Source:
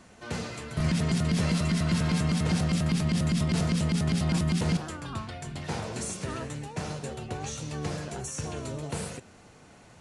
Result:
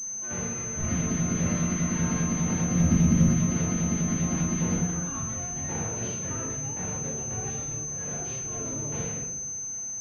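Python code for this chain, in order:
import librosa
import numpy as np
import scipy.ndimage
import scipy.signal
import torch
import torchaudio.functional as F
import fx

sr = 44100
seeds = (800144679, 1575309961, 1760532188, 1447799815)

y = fx.low_shelf(x, sr, hz=270.0, db=10.0, at=(2.73, 3.26))
y = fx.over_compress(y, sr, threshold_db=-37.0, ratio=-0.5, at=(7.61, 8.55))
y = fx.room_shoebox(y, sr, seeds[0], volume_m3=220.0, walls='mixed', distance_m=2.3)
y = fx.pwm(y, sr, carrier_hz=6200.0)
y = y * librosa.db_to_amplitude(-8.5)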